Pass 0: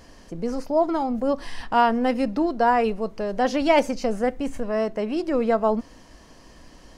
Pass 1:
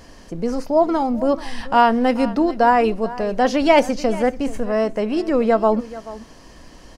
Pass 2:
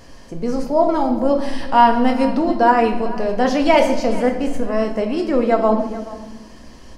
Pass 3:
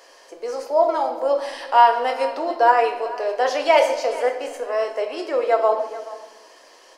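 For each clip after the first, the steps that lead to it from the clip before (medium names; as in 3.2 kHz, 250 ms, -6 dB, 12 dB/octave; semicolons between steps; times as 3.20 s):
delay 433 ms -17 dB; trim +4.5 dB
reverberation RT60 1.1 s, pre-delay 7 ms, DRR 3.5 dB; trim -1 dB
inverse Chebyshev high-pass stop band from 210 Hz, stop band 40 dB; trim -1 dB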